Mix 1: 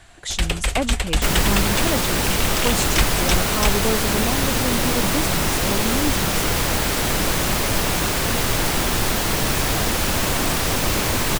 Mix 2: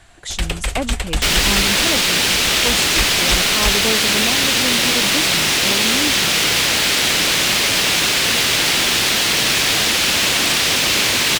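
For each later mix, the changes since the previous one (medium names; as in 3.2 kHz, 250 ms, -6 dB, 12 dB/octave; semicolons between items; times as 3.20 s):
second sound: add frequency weighting D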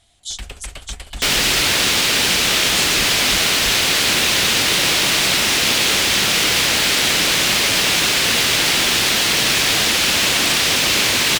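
speech: add brick-wall FIR high-pass 2.9 kHz; first sound -11.0 dB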